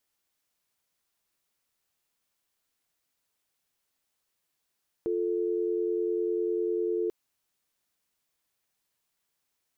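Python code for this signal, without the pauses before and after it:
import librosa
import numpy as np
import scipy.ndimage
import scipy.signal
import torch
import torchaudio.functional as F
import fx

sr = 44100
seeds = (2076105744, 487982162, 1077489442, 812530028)

y = fx.call_progress(sr, length_s=2.04, kind='dial tone', level_db=-28.5)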